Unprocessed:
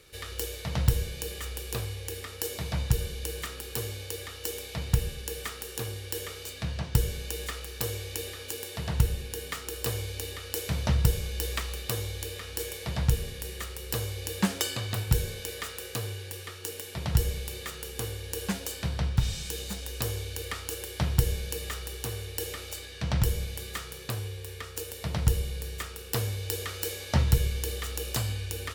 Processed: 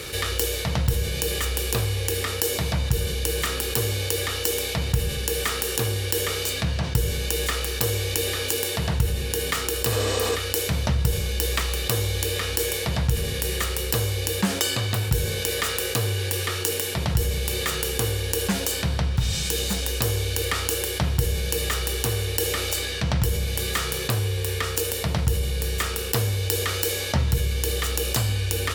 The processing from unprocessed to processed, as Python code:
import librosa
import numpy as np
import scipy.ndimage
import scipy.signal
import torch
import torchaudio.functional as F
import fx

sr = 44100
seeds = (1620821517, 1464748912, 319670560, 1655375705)

p1 = fx.spec_repair(x, sr, seeds[0], start_s=9.93, length_s=0.4, low_hz=230.0, high_hz=8600.0, source='before')
p2 = fx.rider(p1, sr, range_db=10, speed_s=0.5)
p3 = p1 + (p2 * 10.0 ** (2.0 / 20.0))
p4 = scipy.signal.sosfilt(scipy.signal.butter(2, 52.0, 'highpass', fs=sr, output='sos'), p3)
p5 = fx.env_flatten(p4, sr, amount_pct=50)
y = p5 * 10.0 ** (-5.0 / 20.0)